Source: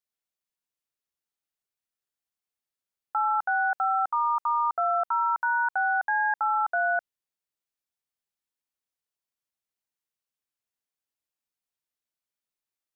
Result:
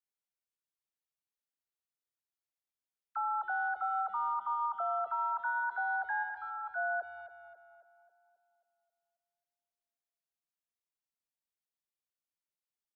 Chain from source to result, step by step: 6.21–6.74 s: peaking EQ 720 Hz -> 500 Hz -10 dB 2.7 oct; phase dispersion lows, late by 47 ms, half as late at 660 Hz; tape echo 269 ms, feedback 59%, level -11 dB, low-pass 1.7 kHz; trim -8.5 dB

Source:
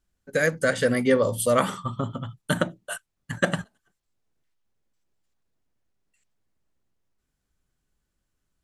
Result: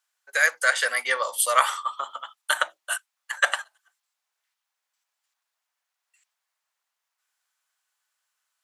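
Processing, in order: high-pass 850 Hz 24 dB/octave; trim +6 dB

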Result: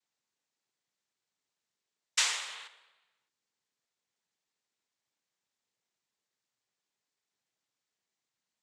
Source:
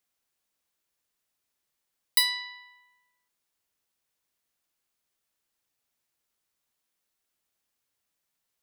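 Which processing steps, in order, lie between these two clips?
2.26–2.67 s: jump at every zero crossing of -43 dBFS; noise-vocoded speech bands 6; trim -2.5 dB

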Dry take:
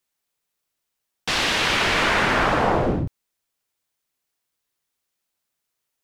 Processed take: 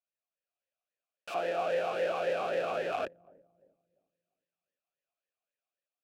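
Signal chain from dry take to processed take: 1.34–2.93 s: sorted samples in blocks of 256 samples; full-wave rectifier; filtered feedback delay 344 ms, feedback 34%, low-pass 910 Hz, level -22 dB; level rider gain up to 6.5 dB; integer overflow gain 17 dB; talking filter a-e 3.7 Hz

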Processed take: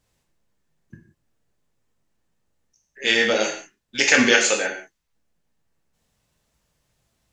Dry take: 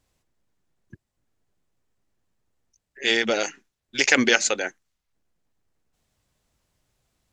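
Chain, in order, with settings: gated-style reverb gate 210 ms falling, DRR 0 dB

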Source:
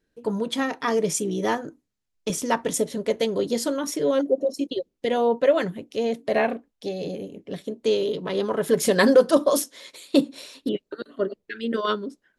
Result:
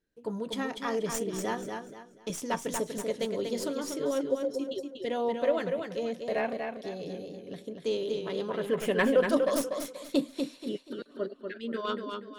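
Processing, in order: tracing distortion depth 0.036 ms; 8.51–9.29 s: resonant high shelf 3.5 kHz -7 dB, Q 3; modulated delay 241 ms, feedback 31%, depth 54 cents, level -5.5 dB; trim -8.5 dB

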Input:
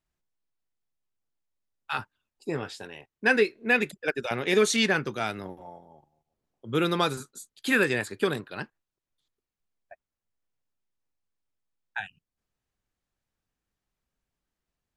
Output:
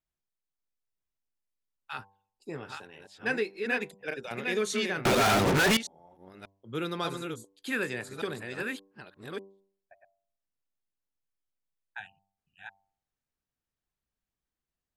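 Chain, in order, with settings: chunks repeated in reverse 587 ms, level -4 dB; de-hum 97.7 Hz, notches 11; 5.05–5.77 s: fuzz box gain 45 dB, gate -46 dBFS; trim -8 dB

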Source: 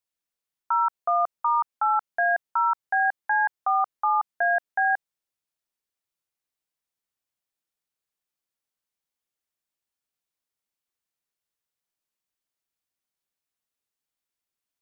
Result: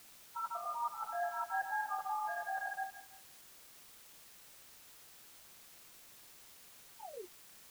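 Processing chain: backward echo that repeats 156 ms, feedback 53%, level -4 dB; low-pass 1.2 kHz 6 dB/octave; de-hum 392.5 Hz, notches 3; reverse; compression 20:1, threshold -32 dBFS, peak gain reduction 15 dB; reverse; painted sound fall, 13.47–13.96 s, 350–940 Hz -45 dBFS; plain phase-vocoder stretch 0.52×; tremolo 5.7 Hz, depth 33%; word length cut 10-bit, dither triangular; trim +2 dB

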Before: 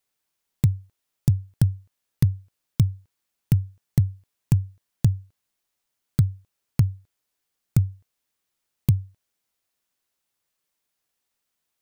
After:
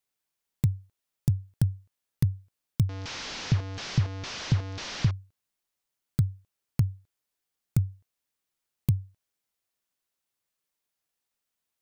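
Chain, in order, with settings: 2.89–5.11 s: one-bit delta coder 32 kbps, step -25 dBFS; trim -5 dB

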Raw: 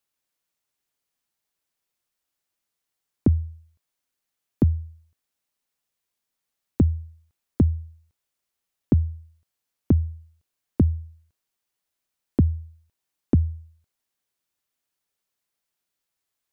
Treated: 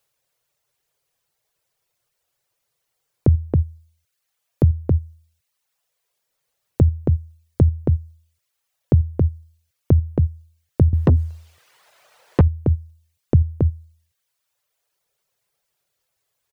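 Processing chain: reverb removal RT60 1.1 s; ten-band graphic EQ 125 Hz +9 dB, 250 Hz -11 dB, 500 Hz +8 dB; echo from a far wall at 47 m, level -8 dB; 10.93–12.41 s: overdrive pedal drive 39 dB, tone 1 kHz, clips at -5 dBFS; in parallel at 0 dB: compressor with a negative ratio -23 dBFS, ratio -1

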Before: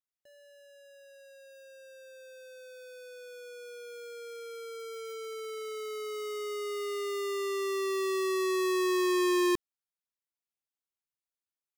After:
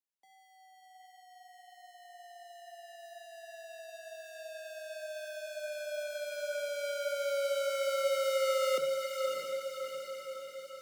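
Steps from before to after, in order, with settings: speed mistake 44.1 kHz file played as 48 kHz; on a send: echo that smears into a reverb 635 ms, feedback 58%, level -4.5 dB; on the sum: simulated room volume 250 m³, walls mixed, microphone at 0.31 m; frequency shift +140 Hz; trim -4.5 dB

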